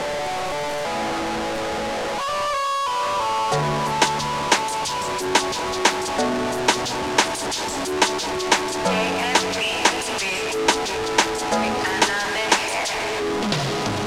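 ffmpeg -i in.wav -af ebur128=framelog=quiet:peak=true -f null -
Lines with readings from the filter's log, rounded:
Integrated loudness:
  I:         -21.5 LUFS
  Threshold: -31.5 LUFS
Loudness range:
  LRA:         2.5 LU
  Threshold: -41.3 LUFS
  LRA low:   -23.0 LUFS
  LRA high:  -20.5 LUFS
True peak:
  Peak:       -2.2 dBFS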